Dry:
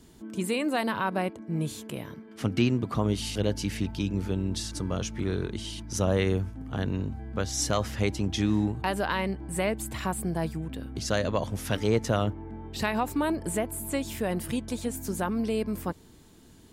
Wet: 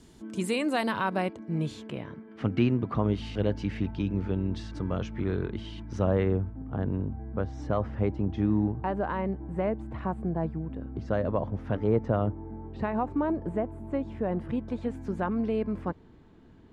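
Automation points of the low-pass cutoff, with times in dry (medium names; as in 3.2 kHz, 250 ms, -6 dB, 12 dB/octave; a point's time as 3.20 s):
0.98 s 9.5 kHz
1.63 s 4.8 kHz
2.15 s 2.2 kHz
5.87 s 2.2 kHz
6.46 s 1.1 kHz
14.23 s 1.1 kHz
14.91 s 1.9 kHz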